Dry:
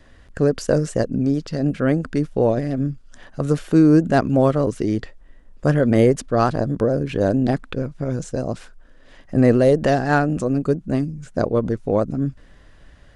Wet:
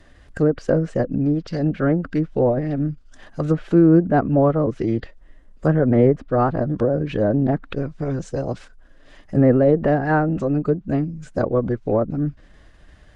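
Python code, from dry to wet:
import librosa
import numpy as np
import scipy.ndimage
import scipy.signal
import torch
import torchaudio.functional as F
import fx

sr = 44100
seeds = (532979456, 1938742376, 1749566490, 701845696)

y = fx.env_lowpass_down(x, sr, base_hz=1400.0, full_db=-14.0)
y = fx.pitch_keep_formants(y, sr, semitones=1.0)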